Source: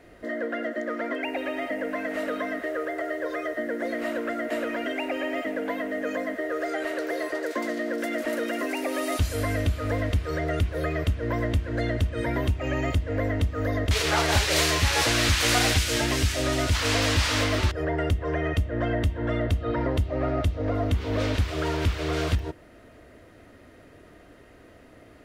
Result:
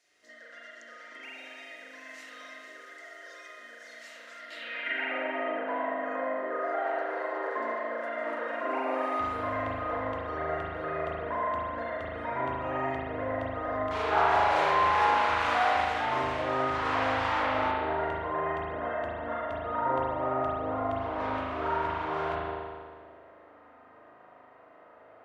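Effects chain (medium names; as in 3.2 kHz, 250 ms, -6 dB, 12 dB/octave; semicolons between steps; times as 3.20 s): band-pass sweep 6 kHz -> 950 Hz, 4.33–5.25 s; spring tank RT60 1.7 s, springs 38 ms, chirp 35 ms, DRR -6.5 dB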